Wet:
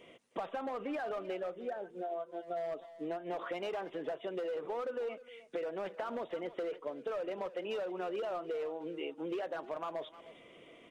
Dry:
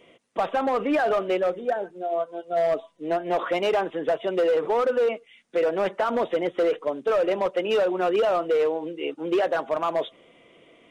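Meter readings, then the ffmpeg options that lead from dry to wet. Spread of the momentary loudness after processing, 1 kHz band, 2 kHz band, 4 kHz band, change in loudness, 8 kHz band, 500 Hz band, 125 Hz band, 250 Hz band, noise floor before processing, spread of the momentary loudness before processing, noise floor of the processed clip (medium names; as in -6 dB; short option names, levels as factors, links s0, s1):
5 LU, -14.5 dB, -14.5 dB, -14.0 dB, -14.5 dB, no reading, -15.0 dB, -13.0 dB, -13.0 dB, -56 dBFS, 7 LU, -58 dBFS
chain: -filter_complex "[0:a]acompressor=threshold=0.0178:ratio=5,asplit=2[s0][s1];[s1]adelay=310,highpass=300,lowpass=3400,asoftclip=type=hard:threshold=0.02,volume=0.2[s2];[s0][s2]amix=inputs=2:normalize=0,volume=0.75"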